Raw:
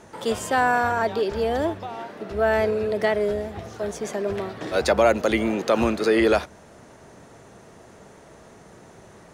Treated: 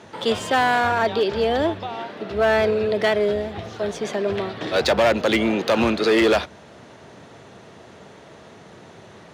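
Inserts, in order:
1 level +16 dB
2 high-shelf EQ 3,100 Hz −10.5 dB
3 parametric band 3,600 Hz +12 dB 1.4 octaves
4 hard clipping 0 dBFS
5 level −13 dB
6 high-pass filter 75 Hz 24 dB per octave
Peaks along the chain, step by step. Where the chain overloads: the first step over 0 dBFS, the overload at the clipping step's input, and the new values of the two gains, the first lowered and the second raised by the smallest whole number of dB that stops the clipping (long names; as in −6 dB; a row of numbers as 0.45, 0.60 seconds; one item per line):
+8.0, +7.5, +9.0, 0.0, −13.0, −8.5 dBFS
step 1, 9.0 dB
step 1 +7 dB, step 5 −4 dB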